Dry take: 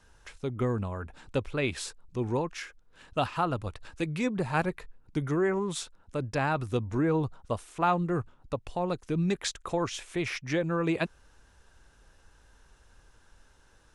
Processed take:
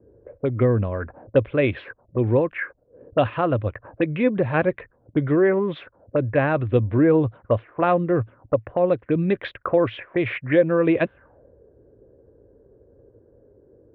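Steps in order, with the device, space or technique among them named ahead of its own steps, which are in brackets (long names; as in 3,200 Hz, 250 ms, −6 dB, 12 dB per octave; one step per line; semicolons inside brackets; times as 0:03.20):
envelope filter bass rig (envelope-controlled low-pass 370–3,500 Hz up, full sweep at −29 dBFS; loudspeaker in its box 84–2,000 Hz, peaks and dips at 110 Hz +7 dB, 170 Hz −4 dB, 300 Hz +3 dB, 550 Hz +8 dB, 870 Hz −8 dB, 1,300 Hz −6 dB)
level +7.5 dB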